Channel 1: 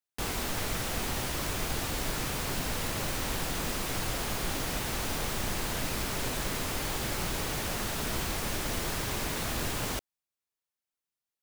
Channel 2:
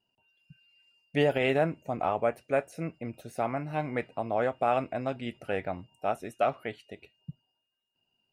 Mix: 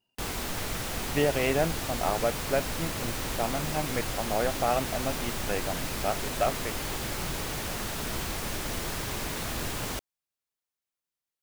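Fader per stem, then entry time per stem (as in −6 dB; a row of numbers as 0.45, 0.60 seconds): −0.5, −0.5 decibels; 0.00, 0.00 seconds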